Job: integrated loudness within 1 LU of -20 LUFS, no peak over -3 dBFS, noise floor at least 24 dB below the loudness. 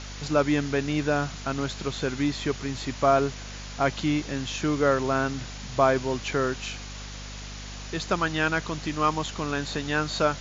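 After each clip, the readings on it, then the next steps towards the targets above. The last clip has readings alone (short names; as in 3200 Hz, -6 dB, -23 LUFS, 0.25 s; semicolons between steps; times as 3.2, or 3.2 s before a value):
hum 50 Hz; harmonics up to 250 Hz; hum level -37 dBFS; noise floor -39 dBFS; noise floor target -51 dBFS; loudness -26.5 LUFS; peak -8.0 dBFS; loudness target -20.0 LUFS
-> de-hum 50 Hz, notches 5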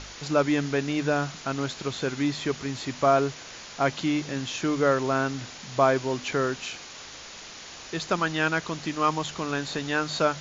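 hum none; noise floor -43 dBFS; noise floor target -51 dBFS
-> denoiser 8 dB, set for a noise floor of -43 dBFS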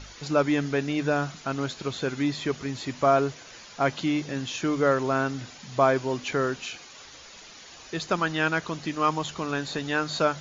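noise floor -47 dBFS; noise floor target -51 dBFS
-> denoiser 6 dB, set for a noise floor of -47 dBFS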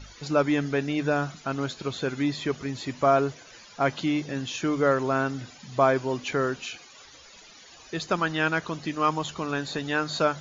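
noise floor -50 dBFS; noise floor target -51 dBFS
-> denoiser 6 dB, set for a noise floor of -50 dBFS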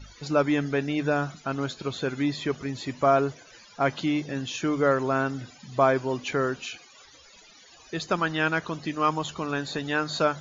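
noise floor -53 dBFS; loudness -27.0 LUFS; peak -8.0 dBFS; loudness target -20.0 LUFS
-> gain +7 dB; limiter -3 dBFS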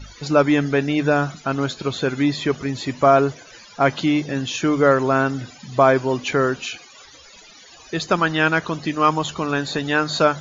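loudness -20.0 LUFS; peak -3.0 dBFS; noise floor -46 dBFS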